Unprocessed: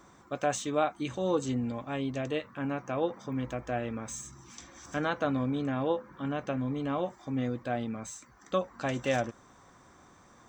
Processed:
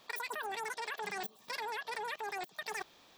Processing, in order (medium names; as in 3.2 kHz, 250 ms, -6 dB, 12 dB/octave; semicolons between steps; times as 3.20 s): wide varispeed 3.3×; level held to a coarse grid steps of 23 dB; trim +7 dB